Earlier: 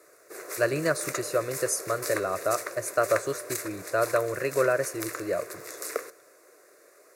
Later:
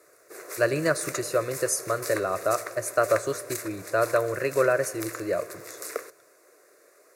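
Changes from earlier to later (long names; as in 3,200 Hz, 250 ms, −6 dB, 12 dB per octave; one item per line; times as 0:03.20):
speech: send +10.0 dB
background: send off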